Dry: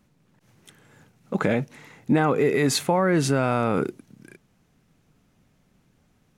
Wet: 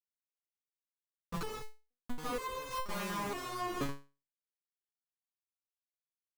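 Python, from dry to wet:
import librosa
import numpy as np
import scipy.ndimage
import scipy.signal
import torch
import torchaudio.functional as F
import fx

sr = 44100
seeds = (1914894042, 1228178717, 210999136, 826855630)

y = np.r_[np.sort(x[:len(x) // 8 * 8].reshape(-1, 8), axis=1).ravel(), x[len(x) // 8 * 8:]]
y = fx.over_compress(y, sr, threshold_db=-23.0, ratio=-0.5, at=(1.33, 2.25))
y = fx.doubler(y, sr, ms=50.0, db=-3.0, at=(2.91, 3.83))
y = fx.room_early_taps(y, sr, ms=(18, 32), db=(-15.0, -15.0))
y = fx.schmitt(y, sr, flips_db=-24.0)
y = fx.peak_eq(y, sr, hz=1100.0, db=10.5, octaves=0.32)
y = fx.resonator_held(y, sr, hz=2.1, low_hz=140.0, high_hz=520.0)
y = F.gain(torch.from_numpy(y), 2.5).numpy()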